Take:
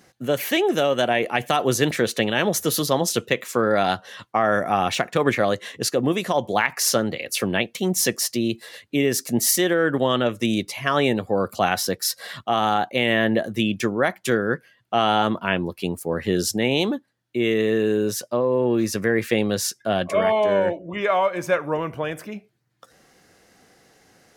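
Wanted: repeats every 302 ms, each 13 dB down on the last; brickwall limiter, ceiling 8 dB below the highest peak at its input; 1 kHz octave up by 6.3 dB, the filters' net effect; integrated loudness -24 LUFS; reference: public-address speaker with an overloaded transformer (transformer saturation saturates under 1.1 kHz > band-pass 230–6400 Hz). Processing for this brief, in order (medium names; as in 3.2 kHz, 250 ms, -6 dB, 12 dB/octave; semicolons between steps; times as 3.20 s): peaking EQ 1 kHz +9 dB; peak limiter -9 dBFS; feedback delay 302 ms, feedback 22%, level -13 dB; transformer saturation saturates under 1.1 kHz; band-pass 230–6400 Hz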